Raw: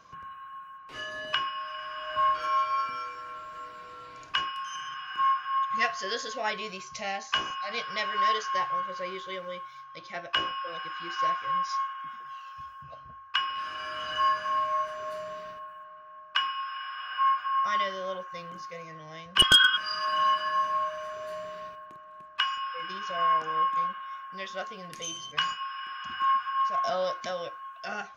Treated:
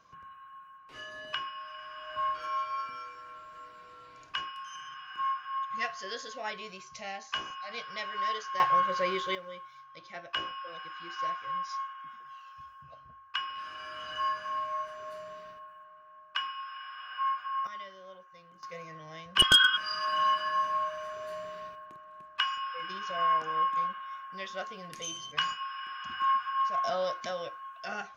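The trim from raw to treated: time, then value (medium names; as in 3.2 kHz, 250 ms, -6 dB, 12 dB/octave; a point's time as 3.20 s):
-6.5 dB
from 8.60 s +5.5 dB
from 9.35 s -6 dB
from 17.67 s -15 dB
from 18.63 s -2 dB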